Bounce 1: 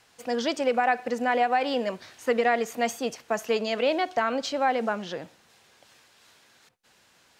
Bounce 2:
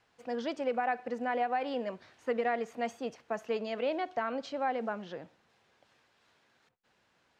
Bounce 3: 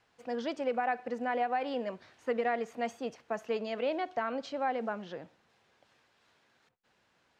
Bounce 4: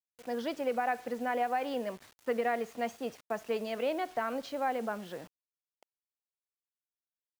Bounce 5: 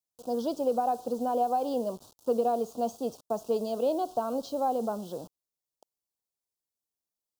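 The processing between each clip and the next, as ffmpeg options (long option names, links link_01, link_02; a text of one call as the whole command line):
ffmpeg -i in.wav -af "aemphasis=mode=reproduction:type=75fm,volume=-8dB" out.wav
ffmpeg -i in.wav -af anull out.wav
ffmpeg -i in.wav -af "acrusher=bits=8:mix=0:aa=0.000001" out.wav
ffmpeg -i in.wav -af "asuperstop=centerf=2000:order=4:qfactor=0.64,volume=5dB" out.wav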